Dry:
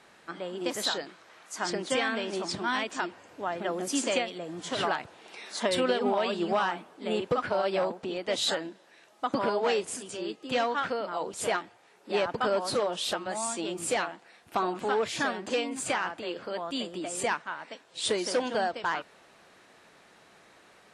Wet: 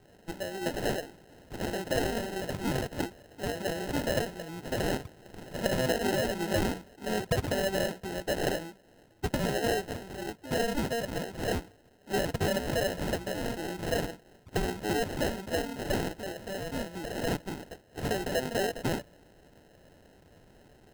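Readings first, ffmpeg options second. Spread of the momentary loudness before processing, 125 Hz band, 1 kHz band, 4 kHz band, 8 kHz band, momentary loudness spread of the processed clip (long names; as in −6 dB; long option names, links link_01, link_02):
9 LU, +10.5 dB, −6.0 dB, −4.5 dB, −4.0 dB, 9 LU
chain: -af "asubboost=boost=8.5:cutoff=94,acrusher=samples=38:mix=1:aa=0.000001"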